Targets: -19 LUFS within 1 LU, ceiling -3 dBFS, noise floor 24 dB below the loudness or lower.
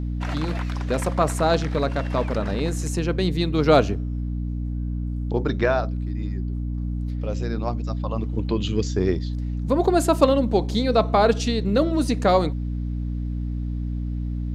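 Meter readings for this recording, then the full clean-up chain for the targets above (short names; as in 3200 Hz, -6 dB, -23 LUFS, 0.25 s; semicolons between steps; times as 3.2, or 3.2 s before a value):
hum 60 Hz; harmonics up to 300 Hz; hum level -24 dBFS; loudness -23.5 LUFS; peak -4.5 dBFS; loudness target -19.0 LUFS
-> de-hum 60 Hz, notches 5; gain +4.5 dB; limiter -3 dBFS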